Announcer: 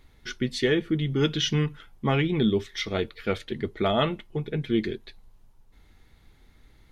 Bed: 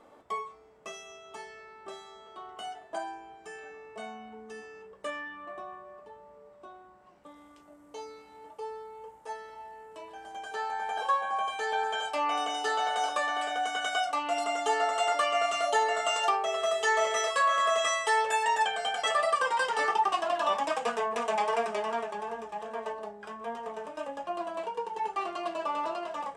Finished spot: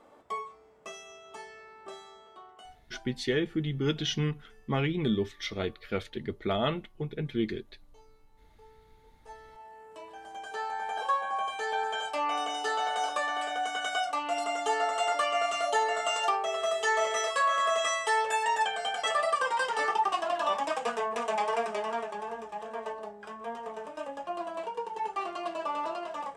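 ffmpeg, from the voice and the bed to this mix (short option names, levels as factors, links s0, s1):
-filter_complex "[0:a]adelay=2650,volume=0.562[s0];[1:a]volume=6.31,afade=t=out:st=2.05:d=0.75:silence=0.141254,afade=t=in:st=9.02:d=0.96:silence=0.141254[s1];[s0][s1]amix=inputs=2:normalize=0"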